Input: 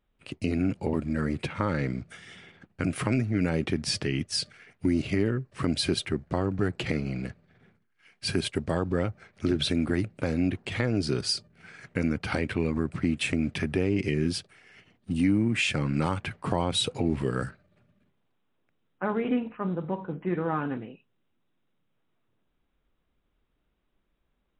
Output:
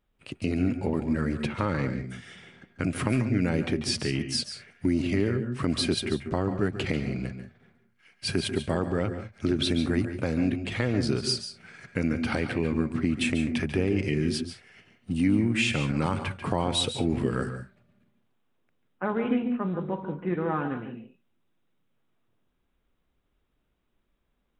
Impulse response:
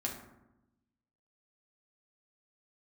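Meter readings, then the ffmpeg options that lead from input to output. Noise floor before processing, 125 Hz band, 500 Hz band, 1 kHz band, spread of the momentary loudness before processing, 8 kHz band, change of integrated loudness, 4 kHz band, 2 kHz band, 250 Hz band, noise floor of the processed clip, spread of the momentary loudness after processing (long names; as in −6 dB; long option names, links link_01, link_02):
−74 dBFS, +0.5 dB, +0.5 dB, +0.5 dB, 8 LU, +0.5 dB, +0.5 dB, +0.5 dB, +0.5 dB, +1.0 dB, −73 dBFS, 9 LU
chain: -filter_complex "[0:a]asplit=2[link_01][link_02];[1:a]atrim=start_sample=2205,atrim=end_sample=3087,adelay=140[link_03];[link_02][link_03]afir=irnorm=-1:irlink=0,volume=-10dB[link_04];[link_01][link_04]amix=inputs=2:normalize=0"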